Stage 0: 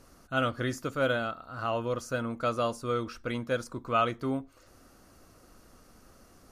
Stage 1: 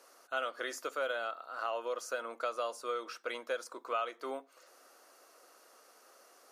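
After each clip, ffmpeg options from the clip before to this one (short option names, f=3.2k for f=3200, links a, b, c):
-af "highpass=f=440:w=0.5412,highpass=f=440:w=1.3066,acompressor=threshold=-33dB:ratio=3"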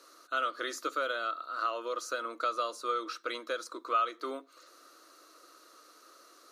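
-af "equalizer=f=125:t=o:w=0.33:g=-9,equalizer=f=315:t=o:w=0.33:g=12,equalizer=f=800:t=o:w=0.33:g=-10,equalizer=f=1.25k:t=o:w=0.33:g=9,equalizer=f=4k:t=o:w=0.33:g=12,equalizer=f=6.3k:t=o:w=0.33:g=3"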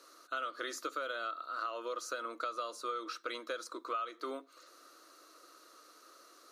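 -af "acompressor=threshold=-33dB:ratio=4,volume=-1.5dB"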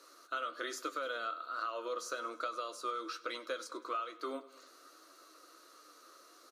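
-af "flanger=delay=9.3:depth=4.3:regen=55:speed=1.2:shape=triangular,aecho=1:1:99|198|297|396|495:0.106|0.0625|0.0369|0.0218|0.0128,volume=4dB"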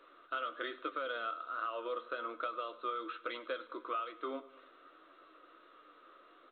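-ar 8000 -c:a pcm_mulaw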